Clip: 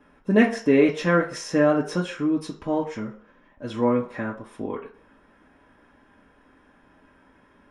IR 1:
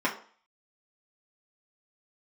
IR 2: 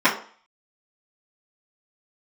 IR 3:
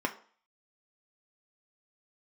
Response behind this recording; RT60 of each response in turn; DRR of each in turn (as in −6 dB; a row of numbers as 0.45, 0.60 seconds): 1; 0.45, 0.45, 0.45 seconds; −5.0, −14.0, 2.5 decibels